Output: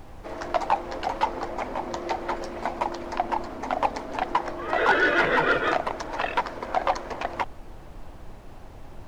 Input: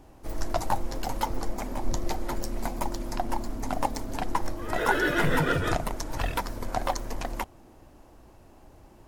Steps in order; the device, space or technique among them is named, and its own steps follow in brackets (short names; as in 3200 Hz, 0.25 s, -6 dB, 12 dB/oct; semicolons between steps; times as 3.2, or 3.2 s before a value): aircraft cabin announcement (BPF 420–3000 Hz; soft clip -19.5 dBFS, distortion -15 dB; brown noise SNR 13 dB); gain +7.5 dB